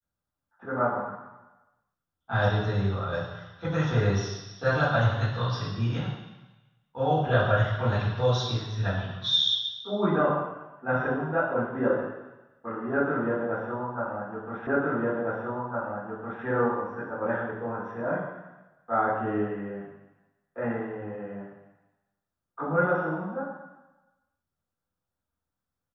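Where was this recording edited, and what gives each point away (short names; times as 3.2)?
14.67 repeat of the last 1.76 s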